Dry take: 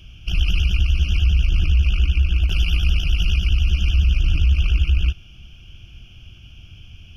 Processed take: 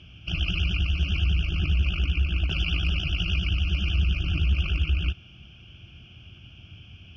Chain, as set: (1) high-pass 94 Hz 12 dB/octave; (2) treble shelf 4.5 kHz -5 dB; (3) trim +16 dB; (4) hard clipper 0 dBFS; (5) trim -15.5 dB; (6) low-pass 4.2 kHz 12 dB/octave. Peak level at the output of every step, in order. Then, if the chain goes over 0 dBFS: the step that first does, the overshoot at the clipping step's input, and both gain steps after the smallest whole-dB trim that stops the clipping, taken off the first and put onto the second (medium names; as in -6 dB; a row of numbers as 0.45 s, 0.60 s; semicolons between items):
-11.5 dBFS, -12.0 dBFS, +4.0 dBFS, 0.0 dBFS, -15.5 dBFS, -15.0 dBFS; step 3, 4.0 dB; step 3 +12 dB, step 5 -11.5 dB